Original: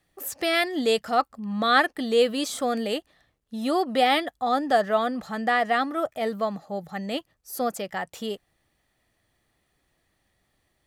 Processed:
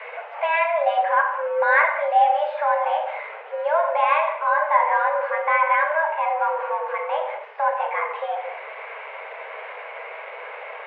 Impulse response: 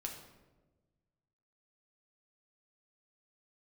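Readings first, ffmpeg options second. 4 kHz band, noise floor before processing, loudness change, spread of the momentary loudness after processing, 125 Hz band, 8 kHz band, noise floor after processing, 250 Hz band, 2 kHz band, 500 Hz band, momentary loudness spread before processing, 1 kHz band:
under -10 dB, -73 dBFS, +4.0 dB, 16 LU, no reading, under -40 dB, -37 dBFS, under -40 dB, +6.0 dB, +2.5 dB, 12 LU, +7.0 dB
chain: -filter_complex "[0:a]aeval=exprs='val(0)+0.5*0.0251*sgn(val(0))':c=same,asplit=2[s0][s1];[s1]acompressor=threshold=0.0316:ratio=6,volume=1.06[s2];[s0][s2]amix=inputs=2:normalize=0[s3];[1:a]atrim=start_sample=2205,afade=t=out:st=0.32:d=0.01,atrim=end_sample=14553[s4];[s3][s4]afir=irnorm=-1:irlink=0,highpass=f=170:t=q:w=0.5412,highpass=f=170:t=q:w=1.307,lowpass=f=2200:t=q:w=0.5176,lowpass=f=2200:t=q:w=0.7071,lowpass=f=2200:t=q:w=1.932,afreqshift=310,volume=1.19"

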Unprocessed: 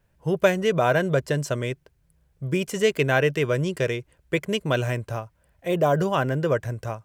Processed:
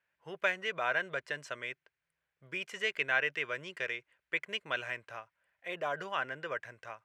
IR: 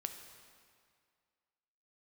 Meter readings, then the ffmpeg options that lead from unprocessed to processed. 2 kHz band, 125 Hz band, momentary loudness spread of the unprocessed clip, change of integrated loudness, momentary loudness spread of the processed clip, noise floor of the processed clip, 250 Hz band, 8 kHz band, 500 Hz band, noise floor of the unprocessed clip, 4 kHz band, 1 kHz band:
-4.0 dB, -29.0 dB, 12 LU, -11.0 dB, 12 LU, under -85 dBFS, -24.0 dB, -16.5 dB, -17.5 dB, -66 dBFS, -7.0 dB, -10.5 dB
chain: -af "bandpass=f=2000:t=q:w=1.5:csg=0,volume=0.75"

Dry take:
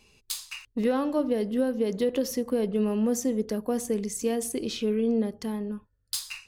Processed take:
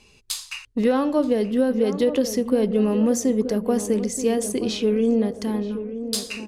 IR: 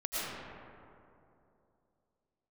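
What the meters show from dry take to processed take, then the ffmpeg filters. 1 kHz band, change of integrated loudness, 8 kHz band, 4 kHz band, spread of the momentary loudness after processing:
+6.0 dB, +6.0 dB, +4.5 dB, +5.5 dB, 9 LU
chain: -filter_complex "[0:a]lowpass=11000,asplit=2[s0][s1];[s1]adelay=927,lowpass=f=1200:p=1,volume=0.299,asplit=2[s2][s3];[s3]adelay=927,lowpass=f=1200:p=1,volume=0.55,asplit=2[s4][s5];[s5]adelay=927,lowpass=f=1200:p=1,volume=0.55,asplit=2[s6][s7];[s7]adelay=927,lowpass=f=1200:p=1,volume=0.55,asplit=2[s8][s9];[s9]adelay=927,lowpass=f=1200:p=1,volume=0.55,asplit=2[s10][s11];[s11]adelay=927,lowpass=f=1200:p=1,volume=0.55[s12];[s2][s4][s6][s8][s10][s12]amix=inputs=6:normalize=0[s13];[s0][s13]amix=inputs=2:normalize=0,volume=1.88"

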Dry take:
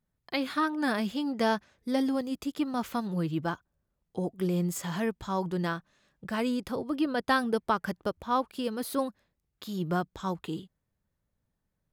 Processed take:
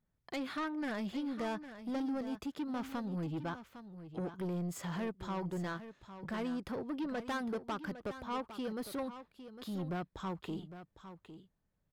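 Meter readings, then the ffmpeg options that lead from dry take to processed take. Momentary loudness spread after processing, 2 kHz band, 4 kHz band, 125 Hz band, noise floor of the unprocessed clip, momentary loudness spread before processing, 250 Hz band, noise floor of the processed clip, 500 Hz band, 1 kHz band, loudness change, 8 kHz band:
13 LU, -9.5 dB, -10.0 dB, -7.0 dB, -82 dBFS, 8 LU, -7.5 dB, -81 dBFS, -9.0 dB, -10.5 dB, -8.5 dB, -10.0 dB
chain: -filter_complex "[0:a]highshelf=f=4600:g=-9.5,asplit=2[s0][s1];[s1]acompressor=threshold=0.0178:ratio=6,volume=1.12[s2];[s0][s2]amix=inputs=2:normalize=0,asoftclip=type=tanh:threshold=0.0531,aecho=1:1:806:0.251,volume=0.422"

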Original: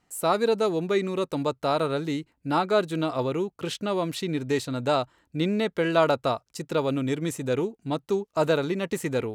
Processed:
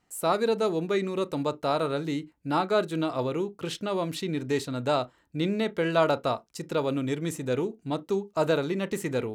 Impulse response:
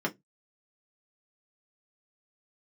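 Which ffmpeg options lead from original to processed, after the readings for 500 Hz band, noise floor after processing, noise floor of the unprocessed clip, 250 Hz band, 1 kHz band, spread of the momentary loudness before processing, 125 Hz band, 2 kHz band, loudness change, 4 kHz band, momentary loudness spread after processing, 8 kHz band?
-2.0 dB, -66 dBFS, -73 dBFS, -1.5 dB, -2.0 dB, 6 LU, -2.0 dB, -2.0 dB, -2.0 dB, -2.0 dB, 6 LU, -2.0 dB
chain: -filter_complex "[0:a]asplit=2[s0][s1];[1:a]atrim=start_sample=2205,atrim=end_sample=3969,adelay=29[s2];[s1][s2]afir=irnorm=-1:irlink=0,volume=0.0631[s3];[s0][s3]amix=inputs=2:normalize=0,volume=0.794"

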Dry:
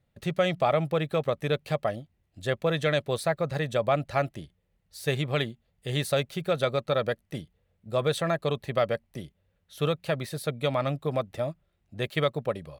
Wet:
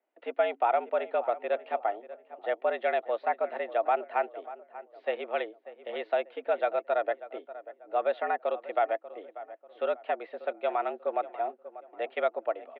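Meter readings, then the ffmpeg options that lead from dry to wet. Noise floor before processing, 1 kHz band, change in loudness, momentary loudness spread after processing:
-74 dBFS, +3.5 dB, -2.5 dB, 15 LU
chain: -filter_complex "[0:a]highshelf=f=2000:g=-10.5,asplit=2[s0][s1];[s1]adelay=590,lowpass=f=1700:p=1,volume=0.178,asplit=2[s2][s3];[s3]adelay=590,lowpass=f=1700:p=1,volume=0.37,asplit=2[s4][s5];[s5]adelay=590,lowpass=f=1700:p=1,volume=0.37[s6];[s0][s2][s4][s6]amix=inputs=4:normalize=0,highpass=f=290:t=q:w=0.5412,highpass=f=290:t=q:w=1.307,lowpass=f=3000:t=q:w=0.5176,lowpass=f=3000:t=q:w=0.7071,lowpass=f=3000:t=q:w=1.932,afreqshift=97"

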